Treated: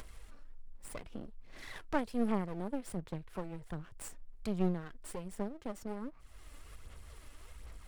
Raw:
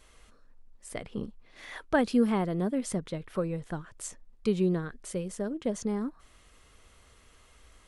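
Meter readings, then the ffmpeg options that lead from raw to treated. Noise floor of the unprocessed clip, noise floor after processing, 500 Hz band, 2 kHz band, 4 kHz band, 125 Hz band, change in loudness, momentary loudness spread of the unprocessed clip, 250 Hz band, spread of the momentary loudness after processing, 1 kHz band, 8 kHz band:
-59 dBFS, -55 dBFS, -9.5 dB, -9.0 dB, -8.5 dB, -7.0 dB, -8.5 dB, 16 LU, -8.0 dB, 22 LU, -5.5 dB, -9.5 dB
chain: -filter_complex "[0:a]equalizer=f=3.6k:w=1.5:g=-4,bandreject=f=6.3k:w=9,aphaser=in_gain=1:out_gain=1:delay=3.5:decay=0.48:speed=1.3:type=sinusoidal,acrossover=split=160[a][b];[b]aeval=exprs='max(val(0),0)':c=same[c];[a][c]amix=inputs=2:normalize=0,acompressor=mode=upward:threshold=-29dB:ratio=2.5,volume=-7.5dB"

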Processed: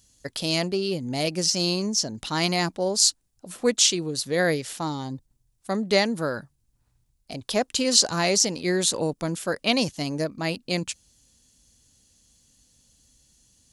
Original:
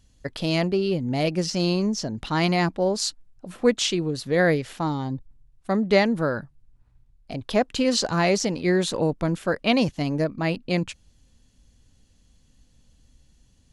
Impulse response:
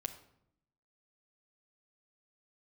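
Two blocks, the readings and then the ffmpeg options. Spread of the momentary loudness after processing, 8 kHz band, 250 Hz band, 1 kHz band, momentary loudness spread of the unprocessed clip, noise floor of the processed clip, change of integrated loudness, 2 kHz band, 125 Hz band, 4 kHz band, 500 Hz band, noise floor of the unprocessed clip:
11 LU, +9.5 dB, -4.0 dB, -2.5 dB, 9 LU, -70 dBFS, 0.0 dB, -1.5 dB, -5.0 dB, +5.0 dB, -2.5 dB, -60 dBFS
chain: -af "highpass=f=67:p=1,bass=f=250:g=-2,treble=f=4k:g=14,volume=-2.5dB"

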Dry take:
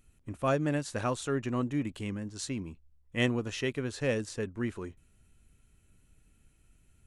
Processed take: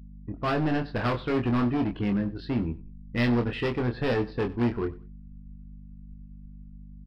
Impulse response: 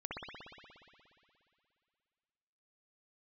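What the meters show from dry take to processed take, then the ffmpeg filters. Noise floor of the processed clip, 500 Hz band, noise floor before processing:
-46 dBFS, +3.5 dB, -66 dBFS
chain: -filter_complex "[0:a]bandreject=f=550:w=12,afftdn=nr=22:nf=-51,lowpass=2k,dynaudnorm=f=220:g=5:m=7dB,aeval=exprs='val(0)+0.00562*(sin(2*PI*50*n/s)+sin(2*PI*2*50*n/s)/2+sin(2*PI*3*50*n/s)/3+sin(2*PI*4*50*n/s)/4+sin(2*PI*5*50*n/s)/5)':c=same,aresample=11025,asoftclip=type=hard:threshold=-26.5dB,aresample=44100,aeval=exprs='0.0794*(cos(1*acos(clip(val(0)/0.0794,-1,1)))-cos(1*PI/2))+0.00178*(cos(7*acos(clip(val(0)/0.0794,-1,1)))-cos(7*PI/2))':c=same,asplit=2[a][b];[b]adelay=25,volume=-5.5dB[c];[a][c]amix=inputs=2:normalize=0,aecho=1:1:94|188:0.106|0.0275,volume=2.5dB"

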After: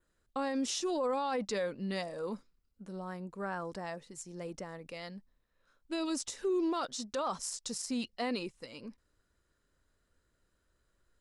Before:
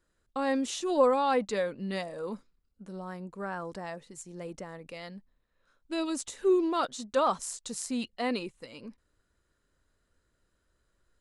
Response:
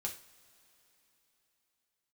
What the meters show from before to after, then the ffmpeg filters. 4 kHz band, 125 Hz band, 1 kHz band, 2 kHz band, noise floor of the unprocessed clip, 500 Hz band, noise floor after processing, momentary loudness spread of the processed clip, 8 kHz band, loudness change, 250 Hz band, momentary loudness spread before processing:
-1.0 dB, -2.0 dB, -6.5 dB, -4.0 dB, -76 dBFS, -6.5 dB, -78 dBFS, 14 LU, -1.0 dB, -6.0 dB, -3.5 dB, 18 LU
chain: -af "adynamicequalizer=threshold=0.001:dfrequency=5300:dqfactor=3.4:tfrequency=5300:tqfactor=3.4:attack=5:release=100:ratio=0.375:range=4:mode=boostabove:tftype=bell,alimiter=level_in=0.5dB:limit=-24dB:level=0:latency=1:release=39,volume=-0.5dB,volume=-1.5dB"

